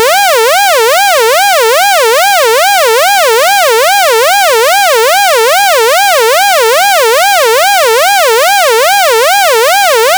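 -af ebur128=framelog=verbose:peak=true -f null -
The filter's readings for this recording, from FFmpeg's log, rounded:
Integrated loudness:
  I:          -5.6 LUFS
  Threshold: -15.6 LUFS
Loudness range:
  LRA:         0.0 LU
  Threshold: -25.6 LUFS
  LRA low:    -5.6 LUFS
  LRA high:   -5.6 LUFS
True peak:
  Peak:        0.5 dBFS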